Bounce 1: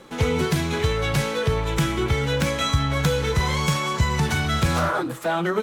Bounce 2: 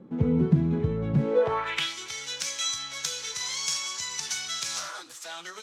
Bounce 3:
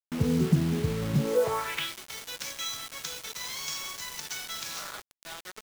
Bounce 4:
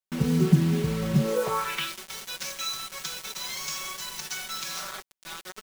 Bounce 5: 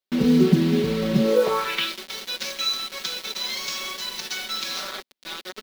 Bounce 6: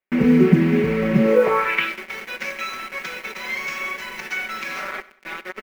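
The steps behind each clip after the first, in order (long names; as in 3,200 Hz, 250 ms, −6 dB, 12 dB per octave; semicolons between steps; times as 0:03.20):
band-pass filter sweep 200 Hz → 5,900 Hz, 0:01.16–0:01.97; level +6.5 dB
low-pass filter 3,500 Hz 6 dB per octave; bit reduction 6 bits; level −2 dB
comb filter 5.3 ms, depth 86%
octave-band graphic EQ 125/250/500/2,000/4,000/8,000 Hz −10/+11/+6/+3/+9/−5 dB
high shelf with overshoot 2,900 Hz −9.5 dB, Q 3; repeating echo 95 ms, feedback 37%, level −19 dB; level +3 dB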